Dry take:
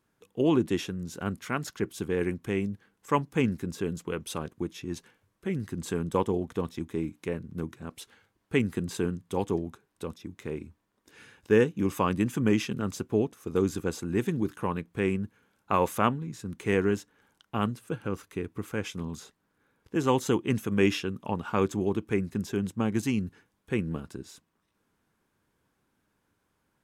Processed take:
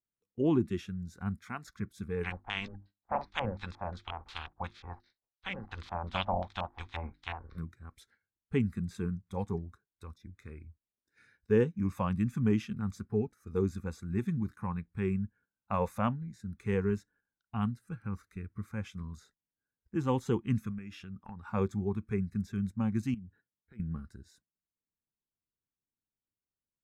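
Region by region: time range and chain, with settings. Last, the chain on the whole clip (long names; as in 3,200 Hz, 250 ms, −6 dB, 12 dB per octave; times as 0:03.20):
0:02.23–0:07.57: ceiling on every frequency bin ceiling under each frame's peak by 29 dB + mains-hum notches 50/100/150/200/250/300/350 Hz + auto-filter low-pass square 2.8 Hz 820–3,900 Hz
0:20.70–0:21.47: high-pass filter 54 Hz + downward compressor 16 to 1, threshold −32 dBFS
0:23.14–0:23.80: high-pass filter 98 Hz + downward compressor, threshold −39 dBFS + linearly interpolated sample-rate reduction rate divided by 8×
whole clip: noise reduction from a noise print of the clip's start 14 dB; noise gate −57 dBFS, range −10 dB; spectral tilt −2.5 dB per octave; level −7.5 dB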